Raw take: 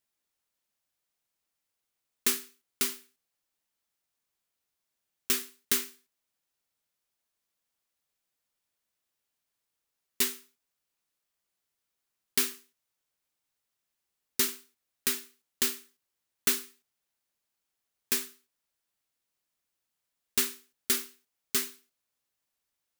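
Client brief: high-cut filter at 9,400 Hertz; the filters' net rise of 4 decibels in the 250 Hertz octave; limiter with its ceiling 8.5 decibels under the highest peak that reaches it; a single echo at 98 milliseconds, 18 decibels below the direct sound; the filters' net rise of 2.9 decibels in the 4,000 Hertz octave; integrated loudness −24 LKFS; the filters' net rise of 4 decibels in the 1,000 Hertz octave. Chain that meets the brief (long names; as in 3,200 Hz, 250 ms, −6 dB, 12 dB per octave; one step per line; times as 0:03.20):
low-pass filter 9,400 Hz
parametric band 250 Hz +4 dB
parametric band 1,000 Hz +5 dB
parametric band 4,000 Hz +3.5 dB
brickwall limiter −19.5 dBFS
single-tap delay 98 ms −18 dB
level +11.5 dB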